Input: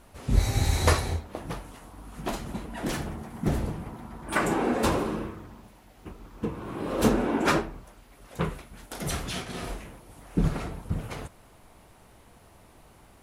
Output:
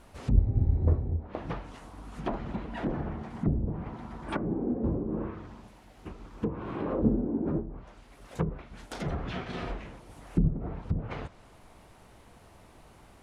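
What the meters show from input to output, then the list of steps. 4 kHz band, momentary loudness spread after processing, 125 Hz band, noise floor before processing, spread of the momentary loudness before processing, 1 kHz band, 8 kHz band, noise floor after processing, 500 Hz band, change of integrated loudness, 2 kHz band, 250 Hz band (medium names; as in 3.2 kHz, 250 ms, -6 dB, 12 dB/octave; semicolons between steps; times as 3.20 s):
-13.5 dB, 19 LU, 0.0 dB, -55 dBFS, 21 LU, -8.5 dB, under -20 dB, -55 dBFS, -5.0 dB, -2.5 dB, -11.5 dB, -1.5 dB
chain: median filter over 3 samples; low-pass that closes with the level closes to 300 Hz, closed at -23.5 dBFS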